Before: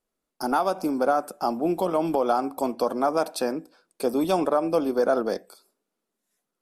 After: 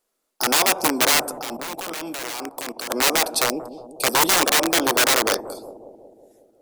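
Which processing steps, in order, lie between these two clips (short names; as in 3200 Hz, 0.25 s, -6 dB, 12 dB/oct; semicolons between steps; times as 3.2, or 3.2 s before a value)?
3.44–4.07 elliptic band-stop 730–2600 Hz; wrapped overs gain 19.5 dB; tone controls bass -13 dB, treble +4 dB; 1.39–2.9 level quantiser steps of 19 dB; on a send: analogue delay 0.182 s, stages 1024, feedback 63%, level -11 dB; on the sum: gain +7 dB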